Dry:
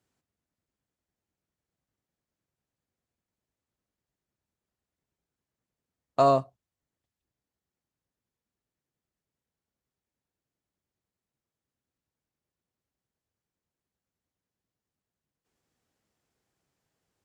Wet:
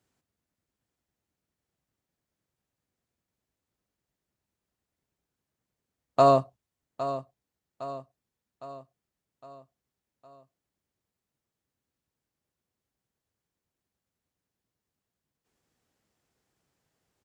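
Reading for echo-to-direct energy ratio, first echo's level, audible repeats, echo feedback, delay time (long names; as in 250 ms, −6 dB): −11.0 dB, −12.5 dB, 4, 51%, 810 ms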